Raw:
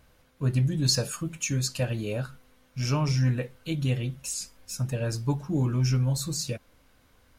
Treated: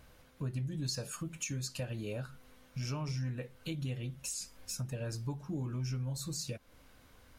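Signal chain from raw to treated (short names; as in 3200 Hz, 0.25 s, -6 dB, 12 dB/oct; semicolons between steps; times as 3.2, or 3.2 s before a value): compressor 3:1, threshold -40 dBFS, peak gain reduction 15 dB; gain +1 dB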